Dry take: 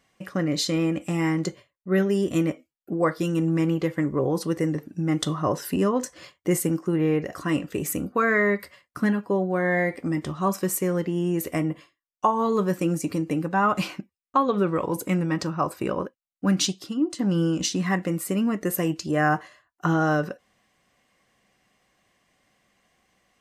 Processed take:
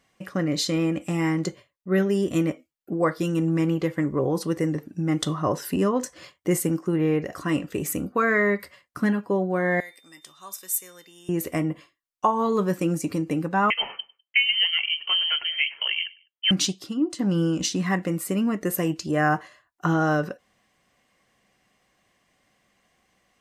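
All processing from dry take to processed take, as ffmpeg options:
-filter_complex "[0:a]asettb=1/sr,asplit=3[s0][s1][s2];[s0]atrim=end=9.804[s3];[s1]atrim=start=9.8:end=11.29,asetpts=PTS-STARTPTS,afade=t=in:d=0.004:c=qsin,afade=t=out:st=1.486:d=0.004:c=qsin,aderivative,aeval=exprs='val(0)+0.00141*sin(2*PI*3600*n/s)':c=same[s4];[s2]atrim=start=11.286[s5];[s3][s4]acrossfade=d=0.004:c1=hsin:c2=qsin[s6];[s6][s5]acrossfade=d=0.004:c1=qsin:c2=hsin,asettb=1/sr,asplit=3[s7][s8][s9];[s7]atrim=end=13.704[s10];[s8]atrim=start=13.7:end=16.51,asetpts=PTS-STARTPTS,afade=t=in:d=0.004:c=qsin,afade=t=out:st=2.806:d=0.004:c=qsin,lowpass=f=2800:t=q:w=0.5098,lowpass=f=2800:t=q:w=0.6013,lowpass=f=2800:t=q:w=0.9,lowpass=f=2800:t=q:w=2.563,afreqshift=-3300,aecho=1:1:101|202:0.0794|0.0246,atrim=end_sample=123921[s11];[s9]atrim=start=16.506[s12];[s10][s11]acrossfade=d=0.004:c1=hsin:c2=qsin[s13];[s13][s12]acrossfade=d=0.004:c1=qsin:c2=hsin"

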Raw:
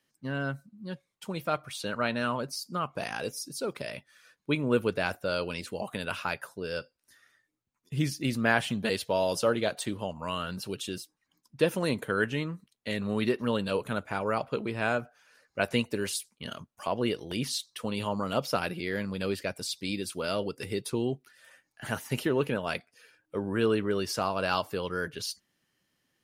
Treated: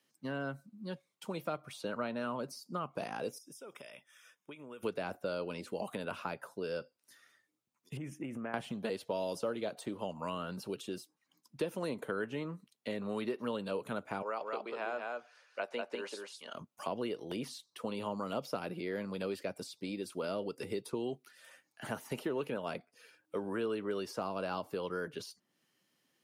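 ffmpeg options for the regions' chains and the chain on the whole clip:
-filter_complex "[0:a]asettb=1/sr,asplit=3[s0][s1][s2];[s0]atrim=end=3.384[s3];[s1]atrim=start=3.38:end=4.83,asetpts=PTS-STARTPTS,afade=t=in:d=0.004:c=qsin,afade=t=out:st=1.446:d=0.004:c=qsin,lowshelf=f=490:g=-10.5,acompressor=threshold=0.00631:ratio=10:attack=3.2:release=140:knee=1:detection=peak,asuperstop=centerf=4300:order=20:qfactor=3.8[s4];[s2]atrim=start=4.826[s5];[s3][s4]acrossfade=d=0.004:c1=hsin:c2=qsin[s6];[s6][s5]acrossfade=d=0.004:c1=qsin:c2=hsin,asettb=1/sr,asplit=3[s7][s8][s9];[s7]atrim=end=7.974[s10];[s8]atrim=start=7.97:end=8.54,asetpts=PTS-STARTPTS,afade=t=in:d=0.004:c=qsin,afade=t=out:st=0.566:d=0.004:c=qsin,aemphasis=mode=reproduction:type=75fm,acompressor=threshold=0.0224:ratio=6:attack=3.2:release=140:knee=1:detection=peak,asuperstop=centerf=4300:order=4:qfactor=1[s11];[s9]atrim=start=8.536[s12];[s10][s11]acrossfade=d=0.004:c1=hsin:c2=qsin[s13];[s13][s12]acrossfade=d=0.004:c1=qsin:c2=hsin,asettb=1/sr,asplit=3[s14][s15][s16];[s14]atrim=end=14.224[s17];[s15]atrim=start=14.22:end=16.55,asetpts=PTS-STARTPTS,afade=t=in:d=0.004:c=qsin,afade=t=out:st=2.326:d=0.004:c=qsin,highpass=640,lowpass=6400,aecho=1:1:194:0.596,atrim=end_sample=102753[s18];[s16]atrim=start=16.546[s19];[s17][s18]acrossfade=d=0.004:c1=hsin:c2=qsin[s20];[s20][s19]acrossfade=d=0.004:c1=qsin:c2=hsin,highpass=170,equalizer=f=1700:w=3.6:g=-3.5,acrossover=split=410|1400[s21][s22][s23];[s21]acompressor=threshold=0.01:ratio=4[s24];[s22]acompressor=threshold=0.0126:ratio=4[s25];[s23]acompressor=threshold=0.00316:ratio=4[s26];[s24][s25][s26]amix=inputs=3:normalize=0"

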